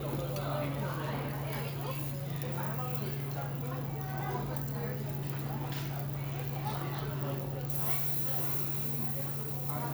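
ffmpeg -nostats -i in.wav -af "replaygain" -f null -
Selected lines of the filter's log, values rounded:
track_gain = +21.0 dB
track_peak = 0.134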